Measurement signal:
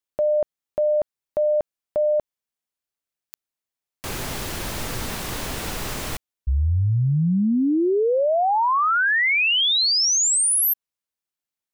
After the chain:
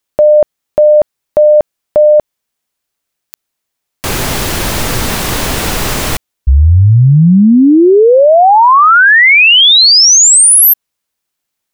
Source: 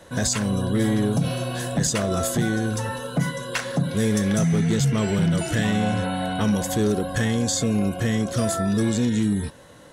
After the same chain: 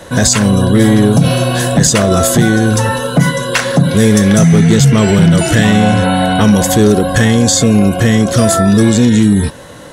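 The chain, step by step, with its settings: maximiser +15.5 dB; gain -1 dB

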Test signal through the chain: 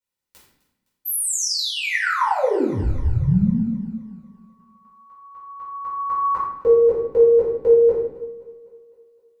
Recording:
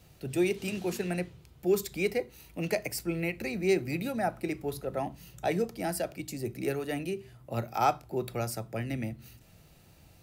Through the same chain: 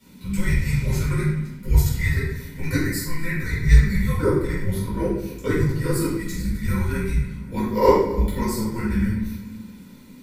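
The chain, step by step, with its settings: notch comb 500 Hz; shoebox room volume 300 m³, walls mixed, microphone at 4.2 m; dynamic EQ 3500 Hz, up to -7 dB, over -46 dBFS, Q 2.8; on a send: thinning echo 0.257 s, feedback 56%, high-pass 230 Hz, level -20 dB; on the sum: frequency shift -330 Hz; gain -1 dB

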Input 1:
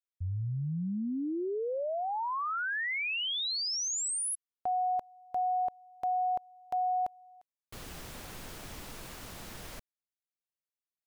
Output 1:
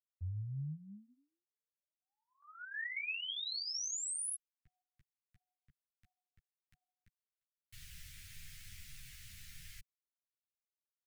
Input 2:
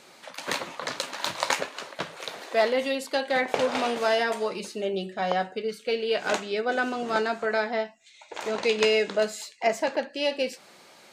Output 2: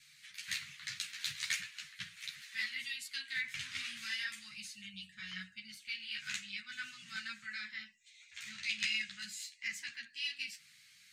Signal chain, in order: elliptic band-stop 140–1900 Hz, stop band 60 dB; gate with hold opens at -52 dBFS, hold 0.107 s, range -12 dB; ensemble effect; gain -3 dB

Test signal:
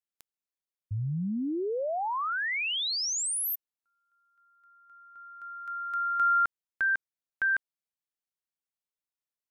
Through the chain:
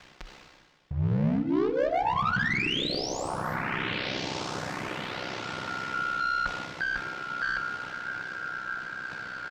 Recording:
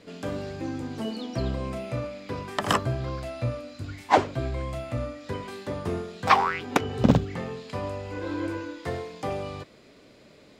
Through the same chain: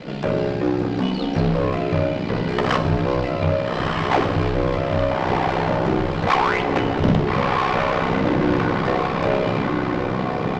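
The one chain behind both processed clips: high shelf 9400 Hz -8 dB; comb 5.5 ms, depth 79%; diffused feedback echo 1.315 s, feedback 55%, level -7 dB; in parallel at -7 dB: fuzz box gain 32 dB, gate -38 dBFS; on the sum: power-law curve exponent 0.5; ring modulator 32 Hz; air absorption 180 m; reverse; upward compressor, threshold -25 dBFS; reverse; FDN reverb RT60 1.3 s, low-frequency decay 1.1×, high-frequency decay 0.95×, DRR 8.5 dB; gain -6 dB

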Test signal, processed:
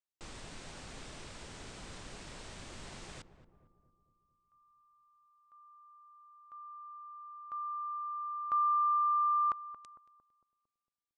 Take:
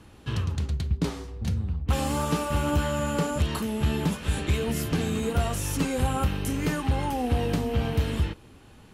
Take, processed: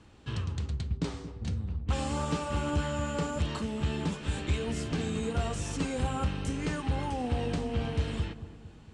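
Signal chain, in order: elliptic low-pass 8600 Hz, stop band 60 dB; darkening echo 0.227 s, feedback 56%, low-pass 860 Hz, level -11 dB; gain -4.5 dB

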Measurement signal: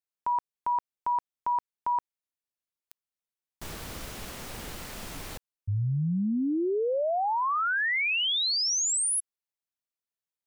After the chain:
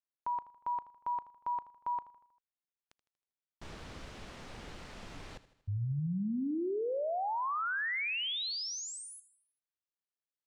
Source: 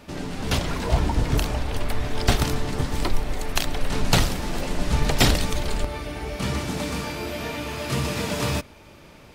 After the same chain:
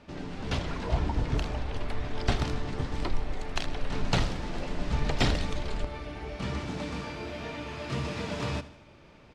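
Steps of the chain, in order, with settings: air absorption 100 m; feedback echo 79 ms, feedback 53%, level -16.5 dB; gain -6.5 dB

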